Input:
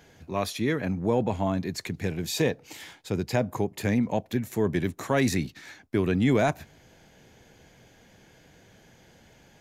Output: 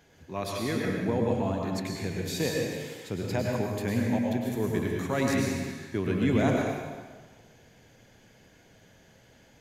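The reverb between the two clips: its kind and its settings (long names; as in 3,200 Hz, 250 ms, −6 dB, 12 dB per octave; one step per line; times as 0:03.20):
dense smooth reverb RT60 1.4 s, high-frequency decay 0.9×, pre-delay 90 ms, DRR −1.5 dB
level −5.5 dB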